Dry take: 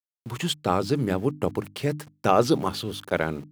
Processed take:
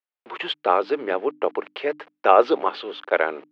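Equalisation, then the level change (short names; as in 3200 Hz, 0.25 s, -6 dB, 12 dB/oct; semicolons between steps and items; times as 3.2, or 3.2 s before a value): HPF 410 Hz 24 dB/oct; LPF 3000 Hz 24 dB/oct; +6.0 dB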